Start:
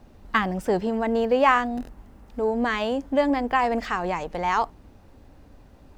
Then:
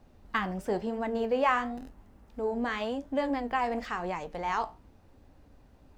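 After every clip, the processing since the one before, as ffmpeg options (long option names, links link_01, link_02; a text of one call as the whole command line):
ffmpeg -i in.wav -af "flanger=delay=9.9:depth=7.9:regen=-67:speed=0.96:shape=triangular,volume=-3dB" out.wav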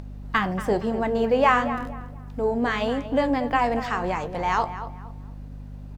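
ffmpeg -i in.wav -filter_complex "[0:a]aeval=exprs='val(0)+0.00708*(sin(2*PI*50*n/s)+sin(2*PI*2*50*n/s)/2+sin(2*PI*3*50*n/s)/3+sin(2*PI*4*50*n/s)/4+sin(2*PI*5*50*n/s)/5)':channel_layout=same,asplit=2[link_01][link_02];[link_02]adelay=233,lowpass=frequency=2400:poles=1,volume=-11.5dB,asplit=2[link_03][link_04];[link_04]adelay=233,lowpass=frequency=2400:poles=1,volume=0.3,asplit=2[link_05][link_06];[link_06]adelay=233,lowpass=frequency=2400:poles=1,volume=0.3[link_07];[link_03][link_05][link_07]amix=inputs=3:normalize=0[link_08];[link_01][link_08]amix=inputs=2:normalize=0,acompressor=mode=upward:threshold=-44dB:ratio=2.5,volume=7dB" out.wav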